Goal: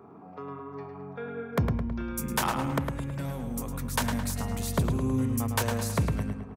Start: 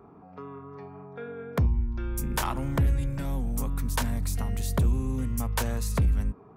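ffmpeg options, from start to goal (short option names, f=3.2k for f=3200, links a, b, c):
-filter_complex "[0:a]highpass=110,asettb=1/sr,asplit=3[a][b][c];[a]atrim=end=2.784[d];[b]atrim=start=2.78:end=3.93,asetpts=PTS-STARTPTS,afade=t=in:d=0.004:c=qsin,afade=t=out:st=1.146:d=0.004:c=qsin,acompressor=threshold=-32dB:ratio=6[e];[c]atrim=start=3.926[f];[d][e]acrossfade=d=0.004:c1=hsin:c2=qsin[g];[g][f]acrossfade=d=0.004:c1=qsin:c2=hsin,asplit=2[h][i];[i]adelay=107,lowpass=f=4.7k:p=1,volume=-5dB,asplit=2[j][k];[k]adelay=107,lowpass=f=4.7k:p=1,volume=0.5,asplit=2[l][m];[m]adelay=107,lowpass=f=4.7k:p=1,volume=0.5,asplit=2[n][o];[o]adelay=107,lowpass=f=4.7k:p=1,volume=0.5,asplit=2[p][q];[q]adelay=107,lowpass=f=4.7k:p=1,volume=0.5,asplit=2[r][s];[s]adelay=107,lowpass=f=4.7k:p=1,volume=0.5[t];[h][j][l][n][p][r][t]amix=inputs=7:normalize=0,volume=1.5dB"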